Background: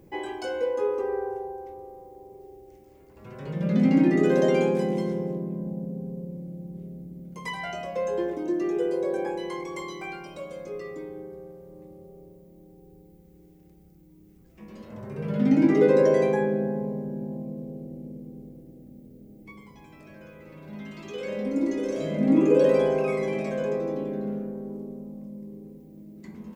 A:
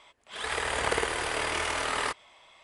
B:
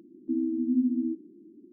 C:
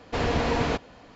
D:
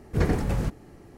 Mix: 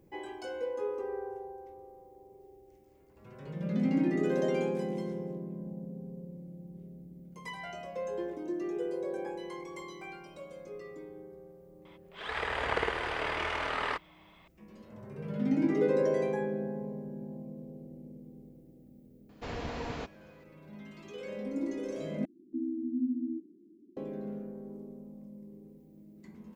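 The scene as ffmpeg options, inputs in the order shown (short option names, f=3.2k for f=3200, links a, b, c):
-filter_complex "[0:a]volume=-8.5dB[a];[1:a]lowpass=3.1k[b];[a]asplit=2[c][d];[c]atrim=end=22.254[e];[2:a]atrim=end=1.72,asetpts=PTS-STARTPTS,volume=-6.5dB[f];[d]atrim=start=23.966[g];[b]atrim=end=2.63,asetpts=PTS-STARTPTS,volume=-2.5dB,afade=t=in:d=0.004:c=hsin,afade=t=out:st=2.626:d=0.004:c=hsin,adelay=11850[h];[3:a]atrim=end=1.15,asetpts=PTS-STARTPTS,volume=-13dB,afade=t=in:d=0.004:c=hsin,afade=t=out:st=1.146:d=0.004:c=hsin,adelay=19290[i];[e][f]acrossfade=d=0.004:c1=hsin:c2=hsin[j];[j][g]acrossfade=d=0.004:c1=hsin:c2=hsin[k];[k][h][i]amix=inputs=3:normalize=0"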